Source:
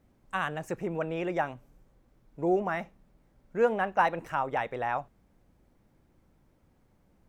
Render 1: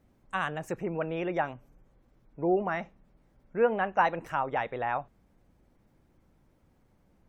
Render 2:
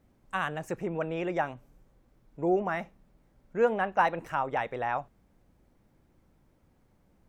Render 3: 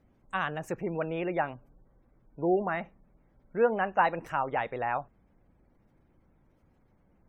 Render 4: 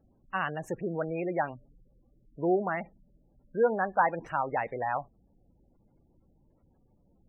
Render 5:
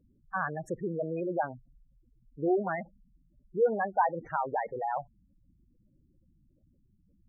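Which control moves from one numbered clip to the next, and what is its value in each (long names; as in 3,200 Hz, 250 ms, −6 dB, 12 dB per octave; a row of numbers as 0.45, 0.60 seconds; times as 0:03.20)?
gate on every frequency bin, under each frame's peak: −45, −60, −35, −20, −10 decibels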